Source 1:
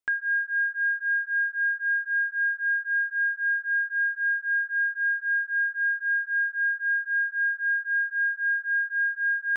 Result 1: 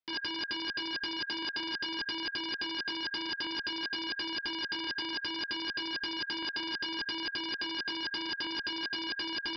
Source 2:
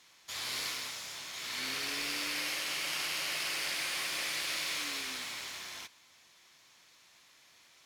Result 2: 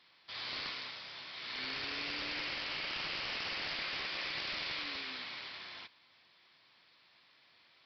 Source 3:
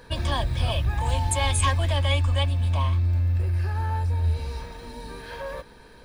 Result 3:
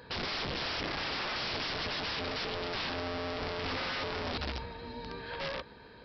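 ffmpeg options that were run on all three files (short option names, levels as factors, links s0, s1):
-af "highpass=71,aresample=11025,aeval=exprs='(mod(25.1*val(0)+1,2)-1)/25.1':c=same,aresample=44100,volume=0.75"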